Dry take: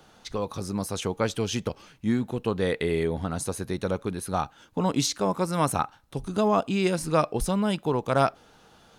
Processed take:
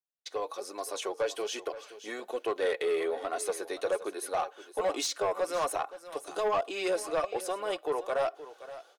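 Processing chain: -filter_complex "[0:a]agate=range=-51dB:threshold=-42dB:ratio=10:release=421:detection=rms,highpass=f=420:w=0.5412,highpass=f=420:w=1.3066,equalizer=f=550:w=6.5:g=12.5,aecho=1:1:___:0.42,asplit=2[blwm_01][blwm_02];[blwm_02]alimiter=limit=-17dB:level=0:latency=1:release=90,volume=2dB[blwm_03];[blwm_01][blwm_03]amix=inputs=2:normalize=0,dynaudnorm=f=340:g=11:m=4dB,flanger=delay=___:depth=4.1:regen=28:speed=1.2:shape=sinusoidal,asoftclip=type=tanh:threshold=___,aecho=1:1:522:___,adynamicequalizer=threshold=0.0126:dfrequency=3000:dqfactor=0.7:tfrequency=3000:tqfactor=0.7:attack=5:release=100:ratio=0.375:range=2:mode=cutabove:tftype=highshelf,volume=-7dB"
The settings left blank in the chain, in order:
2.7, 2.8, -15.5dB, 0.178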